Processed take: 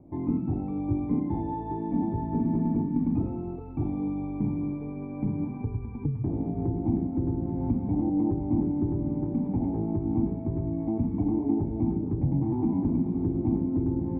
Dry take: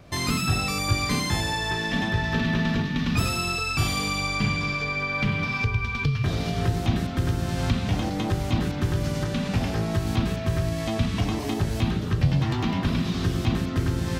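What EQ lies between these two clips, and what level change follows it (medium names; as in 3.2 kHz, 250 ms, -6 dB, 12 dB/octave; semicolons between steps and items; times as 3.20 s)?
cascade formant filter u; +8.0 dB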